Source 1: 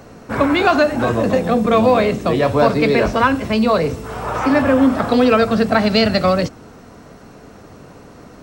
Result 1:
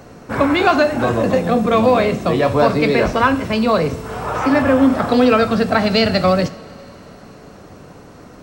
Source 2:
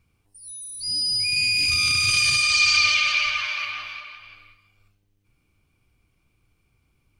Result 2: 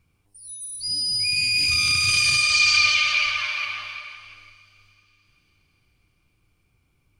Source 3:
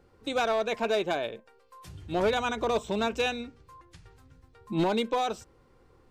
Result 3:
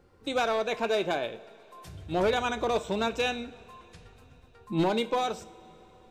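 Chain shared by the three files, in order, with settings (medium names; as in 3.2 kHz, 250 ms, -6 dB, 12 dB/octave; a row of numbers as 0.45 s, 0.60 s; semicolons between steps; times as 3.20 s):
two-slope reverb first 0.46 s, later 4.4 s, from -18 dB, DRR 11.5 dB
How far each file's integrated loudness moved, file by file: 0.0 LU, 0.0 LU, 0.0 LU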